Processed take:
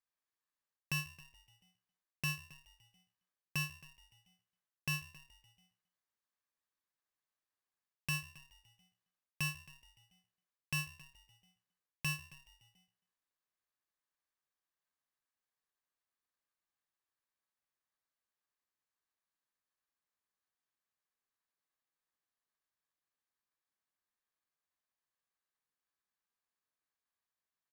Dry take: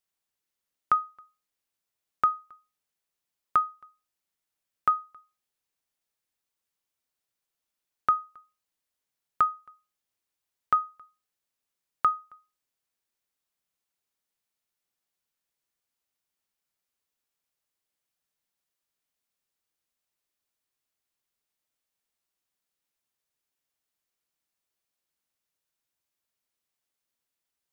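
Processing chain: octaver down 2 oct, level +4 dB; in parallel at -11 dB: sample gate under -38 dBFS; on the sum: HPF 240 Hz 12 dB/oct; low shelf 450 Hz +10 dB; reverse; compressor 6:1, threshold -27 dBFS, peak gain reduction 12.5 dB; reverse; tilt -2 dB/oct; frequency-shifting echo 0.141 s, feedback 64%, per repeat +66 Hz, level -21.5 dB; polarity switched at an audio rate 1400 Hz; gain -7.5 dB

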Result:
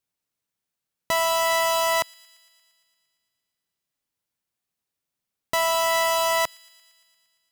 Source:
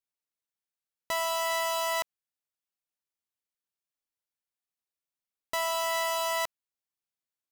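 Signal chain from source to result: bell 140 Hz +7.5 dB 2.1 oct; thin delay 0.115 s, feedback 71%, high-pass 2100 Hz, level -23.5 dB; gain +7 dB

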